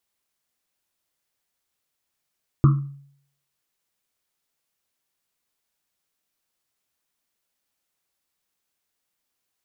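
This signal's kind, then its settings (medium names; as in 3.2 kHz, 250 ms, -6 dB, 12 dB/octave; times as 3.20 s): Risset drum, pitch 140 Hz, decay 0.63 s, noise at 1.2 kHz, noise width 250 Hz, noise 10%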